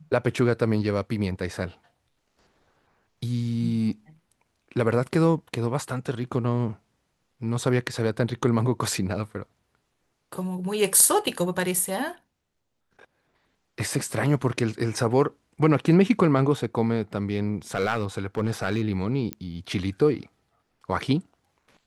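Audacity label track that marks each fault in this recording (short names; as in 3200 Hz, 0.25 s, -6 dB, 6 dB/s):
17.750000	18.820000	clipped -18 dBFS
19.330000	19.330000	pop -14 dBFS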